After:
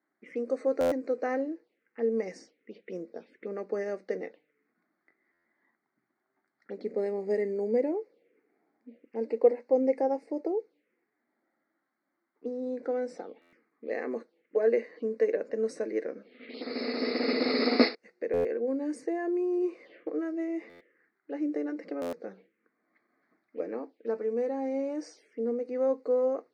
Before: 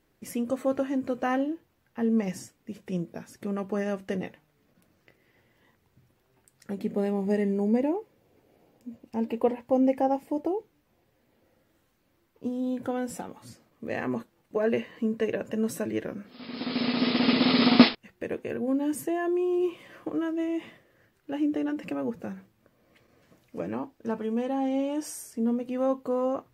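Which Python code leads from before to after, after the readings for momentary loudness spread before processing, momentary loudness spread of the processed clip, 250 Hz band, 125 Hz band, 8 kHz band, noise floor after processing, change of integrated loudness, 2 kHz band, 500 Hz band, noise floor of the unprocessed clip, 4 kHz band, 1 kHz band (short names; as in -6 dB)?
15 LU, 15 LU, -7.0 dB, under -10 dB, under -10 dB, -81 dBFS, -2.5 dB, -4.0 dB, +1.5 dB, -70 dBFS, -7.0 dB, -6.0 dB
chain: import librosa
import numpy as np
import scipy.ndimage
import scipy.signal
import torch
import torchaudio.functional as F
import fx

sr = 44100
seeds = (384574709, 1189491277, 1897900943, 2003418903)

y = fx.env_lowpass(x, sr, base_hz=1800.0, full_db=-23.0)
y = fx.env_phaser(y, sr, low_hz=460.0, high_hz=3200.0, full_db=-30.5)
y = fx.cabinet(y, sr, low_hz=270.0, low_slope=24, high_hz=8700.0, hz=(470.0, 970.0, 2100.0, 4400.0, 7300.0), db=(9, -8, 9, 8, -9))
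y = fx.buffer_glitch(y, sr, at_s=(0.8, 5.33, 13.41, 18.33, 20.69, 22.01), block=512, repeats=9)
y = y * librosa.db_to_amplitude(-3.5)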